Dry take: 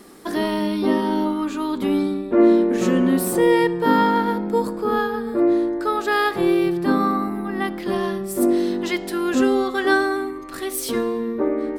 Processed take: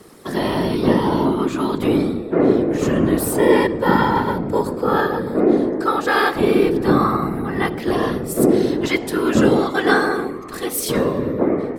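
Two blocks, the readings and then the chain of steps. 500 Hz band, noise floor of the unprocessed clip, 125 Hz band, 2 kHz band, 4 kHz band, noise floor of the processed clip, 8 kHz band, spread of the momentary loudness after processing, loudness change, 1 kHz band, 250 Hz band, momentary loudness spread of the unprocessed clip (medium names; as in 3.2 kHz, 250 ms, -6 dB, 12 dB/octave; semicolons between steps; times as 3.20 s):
+2.5 dB, -32 dBFS, +8.5 dB, +2.5 dB, +2.5 dB, -30 dBFS, +2.5 dB, 6 LU, +2.0 dB, +2.0 dB, +1.5 dB, 8 LU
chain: whisper effect; level rider gain up to 4 dB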